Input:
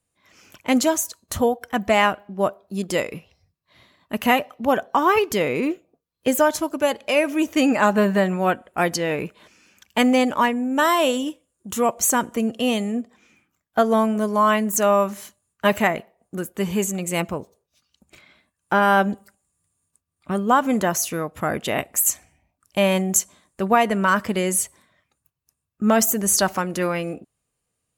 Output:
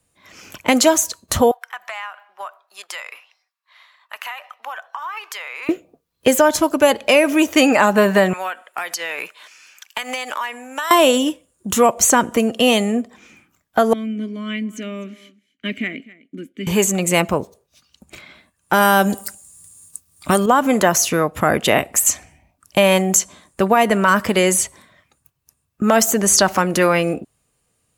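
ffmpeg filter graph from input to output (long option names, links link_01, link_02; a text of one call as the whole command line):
ffmpeg -i in.wav -filter_complex "[0:a]asettb=1/sr,asplit=3[link_01][link_02][link_03];[link_01]atrim=end=1.514[link_04];[link_02]atrim=start=1.51:end=5.69,asetpts=PTS-STARTPTS,afade=type=in:duration=0.004:curve=qsin,afade=type=out:start_time=4.176:duration=0.004:curve=qsin,highpass=frequency=1000:width=0.5412,highpass=frequency=1000:width=1.3066,highshelf=frequency=3100:gain=-10.5,acompressor=threshold=-36dB:ratio=8:attack=3.2:release=140:knee=1:detection=peak[link_05];[link_03]atrim=start=5.686[link_06];[link_04][link_05]acrossfade=duration=0.004:curve1=hsin:curve2=qsin[link_07];[link_07][link_06]acrossfade=duration=0.004:curve1=qsin:curve2=hsin,asettb=1/sr,asplit=3[link_08][link_09][link_10];[link_08]atrim=end=8.334[link_11];[link_09]atrim=start=8.33:end=10.91,asetpts=PTS-STARTPTS,afade=type=in:duration=0.004:curve=qsin,afade=type=out:start_time=2.576:duration=0.004:curve=qsin,highpass=1100,acompressor=threshold=-30dB:ratio=12:attack=3.2:release=140:knee=1:detection=peak[link_12];[link_10]atrim=start=10.906[link_13];[link_11][link_12]acrossfade=duration=0.004:curve1=hsin:curve2=qsin[link_14];[link_14][link_13]acrossfade=duration=0.004:curve1=qsin:curve2=hsin,asettb=1/sr,asplit=3[link_15][link_16][link_17];[link_15]atrim=end=13.934[link_18];[link_16]atrim=start=13.93:end=16.67,asetpts=PTS-STARTPTS,afade=type=in:duration=0.004:curve=qsin,afade=type=out:start_time=2.736:duration=0.004:curve=qsin,asplit=3[link_19][link_20][link_21];[link_19]bandpass=frequency=270:width_type=q:width=8,volume=0dB[link_22];[link_20]bandpass=frequency=2290:width_type=q:width=8,volume=-6dB[link_23];[link_21]bandpass=frequency=3010:width_type=q:width=8,volume=-9dB[link_24];[link_22][link_23][link_24]amix=inputs=3:normalize=0,aecho=1:1:253:0.1,atrim=end_sample=120834[link_25];[link_17]atrim=start=16.666[link_26];[link_18][link_25]acrossfade=duration=0.004:curve1=hsin:curve2=qsin[link_27];[link_27][link_26]acrossfade=duration=0.004:curve1=qsin:curve2=hsin,asettb=1/sr,asplit=3[link_28][link_29][link_30];[link_28]atrim=end=18.734[link_31];[link_29]atrim=start=18.73:end=20.46,asetpts=PTS-STARTPTS,afade=type=in:duration=0.004:curve=qsin,afade=type=out:start_time=1.726:duration=0.004:curve=qsin,bass=frequency=250:gain=1,treble=frequency=4000:gain=14,acontrast=36[link_32];[link_30]atrim=start=20.456[link_33];[link_31][link_32]acrossfade=duration=0.004:curve1=hsin:curve2=qsin[link_34];[link_34][link_33]acrossfade=duration=0.004:curve1=qsin:curve2=hsin,acrossover=split=400|7600[link_35][link_36][link_37];[link_35]acompressor=threshold=-30dB:ratio=4[link_38];[link_36]acompressor=threshold=-20dB:ratio=4[link_39];[link_37]acompressor=threshold=-35dB:ratio=4[link_40];[link_38][link_39][link_40]amix=inputs=3:normalize=0,alimiter=level_in=11dB:limit=-1dB:release=50:level=0:latency=1,volume=-1dB" out.wav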